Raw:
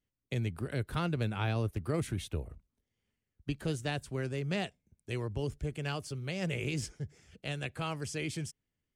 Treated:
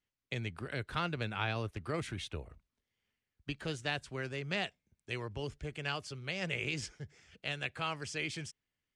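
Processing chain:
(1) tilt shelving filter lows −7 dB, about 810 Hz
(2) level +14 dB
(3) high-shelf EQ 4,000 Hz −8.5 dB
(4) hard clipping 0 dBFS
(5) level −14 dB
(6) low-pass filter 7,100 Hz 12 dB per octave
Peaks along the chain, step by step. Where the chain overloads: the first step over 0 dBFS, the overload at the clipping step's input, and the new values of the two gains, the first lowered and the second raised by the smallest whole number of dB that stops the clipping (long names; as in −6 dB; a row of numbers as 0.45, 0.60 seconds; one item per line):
−16.0, −2.0, −4.5, −4.5, −18.5, −19.0 dBFS
no step passes full scale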